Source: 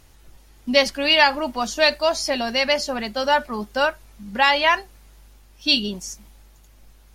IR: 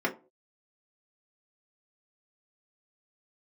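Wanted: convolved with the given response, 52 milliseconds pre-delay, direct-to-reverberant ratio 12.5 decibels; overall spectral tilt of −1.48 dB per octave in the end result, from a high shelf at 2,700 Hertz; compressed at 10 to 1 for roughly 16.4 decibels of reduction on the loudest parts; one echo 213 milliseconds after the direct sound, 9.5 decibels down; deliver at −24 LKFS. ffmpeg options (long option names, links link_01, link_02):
-filter_complex "[0:a]highshelf=frequency=2700:gain=9,acompressor=threshold=-25dB:ratio=10,aecho=1:1:213:0.335,asplit=2[link_01][link_02];[1:a]atrim=start_sample=2205,adelay=52[link_03];[link_02][link_03]afir=irnorm=-1:irlink=0,volume=-22.5dB[link_04];[link_01][link_04]amix=inputs=2:normalize=0,volume=4.5dB"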